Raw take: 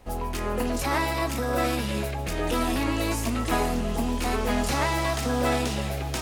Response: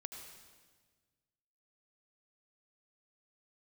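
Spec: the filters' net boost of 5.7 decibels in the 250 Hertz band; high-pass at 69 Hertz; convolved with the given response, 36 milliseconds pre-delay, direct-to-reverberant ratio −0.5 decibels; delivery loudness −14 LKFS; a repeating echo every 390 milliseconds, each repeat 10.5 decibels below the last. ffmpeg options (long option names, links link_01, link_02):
-filter_complex "[0:a]highpass=69,equalizer=frequency=250:width_type=o:gain=6.5,aecho=1:1:390|780|1170:0.299|0.0896|0.0269,asplit=2[link_01][link_02];[1:a]atrim=start_sample=2205,adelay=36[link_03];[link_02][link_03]afir=irnorm=-1:irlink=0,volume=3.5dB[link_04];[link_01][link_04]amix=inputs=2:normalize=0,volume=6dB"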